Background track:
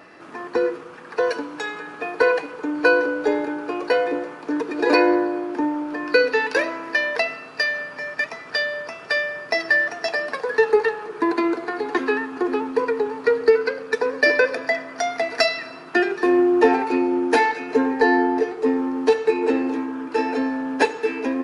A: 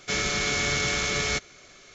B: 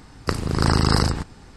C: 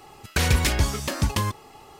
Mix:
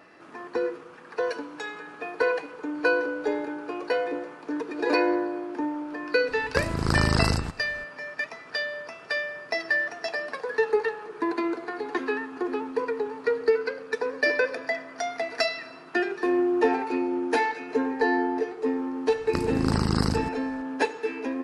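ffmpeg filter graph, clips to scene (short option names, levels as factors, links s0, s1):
-filter_complex "[2:a]asplit=2[s0][s1];[0:a]volume=0.473[s2];[s1]equalizer=f=240:t=o:w=1.2:g=8[s3];[s0]atrim=end=1.56,asetpts=PTS-STARTPTS,volume=0.596,afade=t=in:d=0.004:c=hsin,afade=t=out:st=1.556:d=0.004:c=hsin,adelay=6280[s4];[s3]atrim=end=1.56,asetpts=PTS-STARTPTS,volume=0.376,afade=t=in:d=0.004:c=hsin,afade=t=out:st=1.556:d=0.004:c=hsin,adelay=19060[s5];[s2][s4][s5]amix=inputs=3:normalize=0"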